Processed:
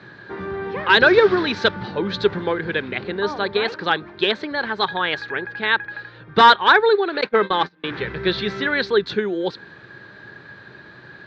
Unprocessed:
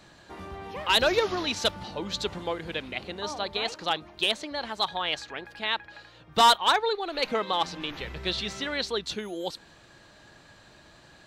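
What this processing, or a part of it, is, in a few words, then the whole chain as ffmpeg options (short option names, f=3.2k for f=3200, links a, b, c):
guitar cabinet: -filter_complex "[0:a]highpass=100,equalizer=f=120:t=q:w=4:g=8,equalizer=f=190:t=q:w=4:g=4,equalizer=f=400:t=q:w=4:g=9,equalizer=f=680:t=q:w=4:g=-6,equalizer=f=1.6k:t=q:w=4:g=10,equalizer=f=2.9k:t=q:w=4:g=-7,lowpass=f=3.9k:w=0.5412,lowpass=f=3.9k:w=1.3066,asettb=1/sr,asplit=3[a][b][c];[a]atrim=end=7.214[d];[b]atrim=start=7.21:end=7.84,asetpts=PTS-STARTPTS,afade=t=in:d=0.004:c=qsin,afade=t=out:st=0.626:d=0.004:c=qsin,agate=range=-29dB:threshold=-27dB:ratio=16:detection=peak[e];[c]atrim=start=7.836[f];[d][e]acrossfade=d=0.004:c1=hsin:c2=qsin[g];[g][f]acrossfade=d=0.004:c1=qsin:c2=hsin,volume=7.5dB"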